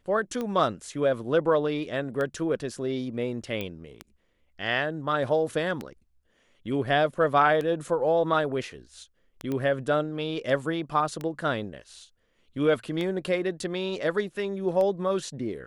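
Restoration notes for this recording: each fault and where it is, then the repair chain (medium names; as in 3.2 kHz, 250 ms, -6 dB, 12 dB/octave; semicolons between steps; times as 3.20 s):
tick 33 1/3 rpm -19 dBFS
3.61 s: pop -18 dBFS
9.52 s: pop -19 dBFS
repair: de-click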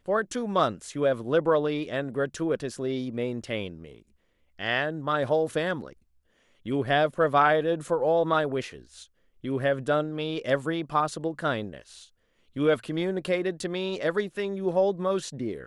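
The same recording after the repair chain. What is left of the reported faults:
nothing left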